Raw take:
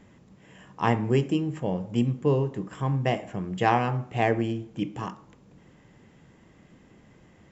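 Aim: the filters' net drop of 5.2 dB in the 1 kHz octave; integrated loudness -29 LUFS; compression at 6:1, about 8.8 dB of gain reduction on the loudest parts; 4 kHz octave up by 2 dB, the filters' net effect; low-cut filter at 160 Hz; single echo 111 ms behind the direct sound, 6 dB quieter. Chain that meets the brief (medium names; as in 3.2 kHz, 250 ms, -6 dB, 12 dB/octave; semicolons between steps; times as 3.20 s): high-pass 160 Hz; peaking EQ 1 kHz -7.5 dB; peaking EQ 4 kHz +4 dB; compression 6:1, threshold -29 dBFS; delay 111 ms -6 dB; trim +5 dB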